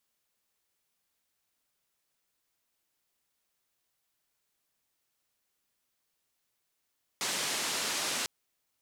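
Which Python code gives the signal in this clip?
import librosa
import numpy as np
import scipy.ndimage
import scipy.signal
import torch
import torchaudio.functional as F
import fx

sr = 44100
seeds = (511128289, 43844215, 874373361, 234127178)

y = fx.band_noise(sr, seeds[0], length_s=1.05, low_hz=190.0, high_hz=7600.0, level_db=-33.0)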